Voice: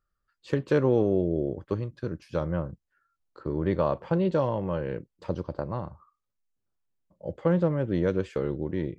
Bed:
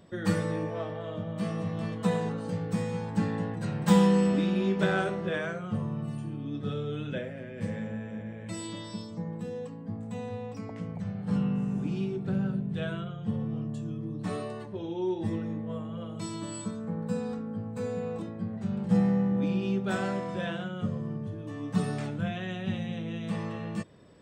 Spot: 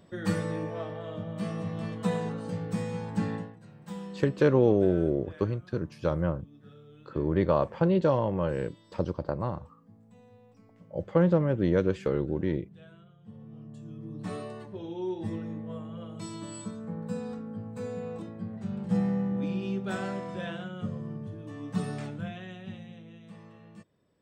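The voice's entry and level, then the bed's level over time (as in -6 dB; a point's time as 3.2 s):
3.70 s, +1.0 dB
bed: 3.35 s -1.5 dB
3.6 s -19 dB
13.18 s -19 dB
14.2 s -3 dB
22.04 s -3 dB
23.33 s -16 dB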